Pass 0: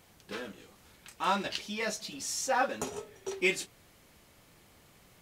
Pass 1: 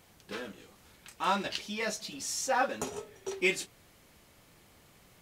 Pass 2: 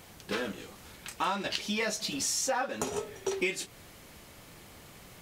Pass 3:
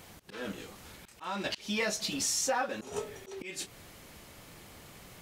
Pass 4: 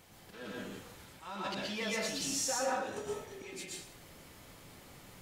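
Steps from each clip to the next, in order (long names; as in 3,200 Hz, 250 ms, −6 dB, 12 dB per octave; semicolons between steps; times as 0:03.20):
no processing that can be heard
downward compressor 8 to 1, threshold −36 dBFS, peak gain reduction 13.5 dB; level +8.5 dB
volume swells 198 ms
dense smooth reverb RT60 0.71 s, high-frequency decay 0.75×, pre-delay 105 ms, DRR −3.5 dB; level −8 dB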